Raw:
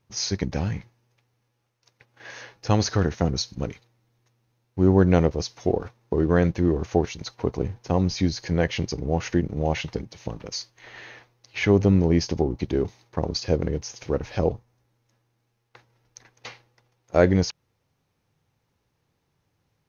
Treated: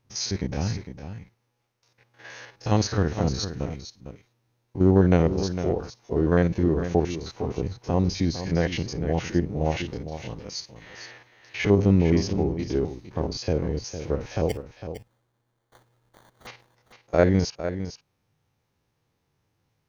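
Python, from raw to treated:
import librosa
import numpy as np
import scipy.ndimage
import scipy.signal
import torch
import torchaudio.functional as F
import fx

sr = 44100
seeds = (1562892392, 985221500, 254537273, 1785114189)

y = fx.spec_steps(x, sr, hold_ms=50)
y = fx.sample_hold(y, sr, seeds[0], rate_hz=2600.0, jitter_pct=0, at=(14.49, 16.47))
y = y + 10.0 ** (-10.5 / 20.0) * np.pad(y, (int(455 * sr / 1000.0), 0))[:len(y)]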